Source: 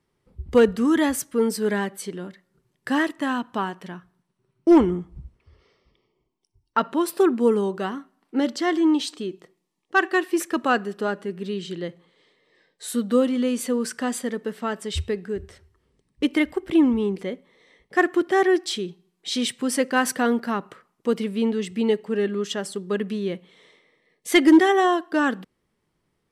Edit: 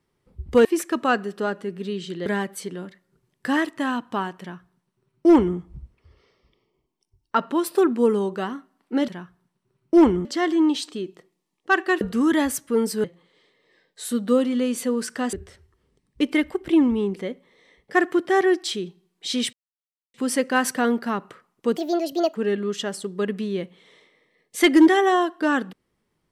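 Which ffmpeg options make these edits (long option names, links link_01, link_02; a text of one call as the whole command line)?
ffmpeg -i in.wav -filter_complex "[0:a]asplit=11[link_01][link_02][link_03][link_04][link_05][link_06][link_07][link_08][link_09][link_10][link_11];[link_01]atrim=end=0.652[link_12];[link_02]atrim=start=10.258:end=11.872[link_13];[link_03]atrim=start=1.678:end=8.502[link_14];[link_04]atrim=start=3.818:end=4.992[link_15];[link_05]atrim=start=8.498:end=10.262[link_16];[link_06]atrim=start=0.648:end=1.682[link_17];[link_07]atrim=start=11.868:end=14.162[link_18];[link_08]atrim=start=15.348:end=19.55,asetpts=PTS-STARTPTS,afade=type=out:start_time=4.198:duration=0.004:curve=hsin,apad=pad_dur=0.61[link_19];[link_09]atrim=start=19.55:end=21.184,asetpts=PTS-STARTPTS,afade=type=in:duration=0.004:curve=hsin[link_20];[link_10]atrim=start=21.18:end=22.07,asetpts=PTS-STARTPTS,asetrate=67032,aresample=44100[link_21];[link_11]atrim=start=22.066[link_22];[link_12][link_13]acrossfade=duration=0.004:curve1=hsin:curve2=hsin[link_23];[link_23][link_14]acrossfade=duration=0.004:curve1=hsin:curve2=hsin[link_24];[link_24][link_15]acrossfade=duration=0.004:curve1=hsin:curve2=hsin[link_25];[link_25][link_16]acrossfade=duration=0.004:curve1=hsin:curve2=hsin[link_26];[link_26][link_17]acrossfade=duration=0.004:curve1=hsin:curve2=hsin[link_27];[link_27][link_18]acrossfade=duration=0.004:curve1=hsin:curve2=hsin[link_28];[link_19][link_20]concat=n=2:v=0:a=1[link_29];[link_28][link_29]acrossfade=duration=0.004:curve1=hsin:curve2=hsin[link_30];[link_30][link_21]acrossfade=duration=0.004:curve1=hsin:curve2=hsin[link_31];[link_31][link_22]acrossfade=duration=0.004:curve1=hsin:curve2=hsin" out.wav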